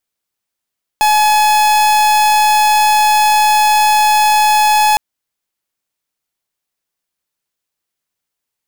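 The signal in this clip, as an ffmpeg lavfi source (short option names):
-f lavfi -i "aevalsrc='0.299*(2*lt(mod(849*t,1),0.44)-1)':d=3.96:s=44100"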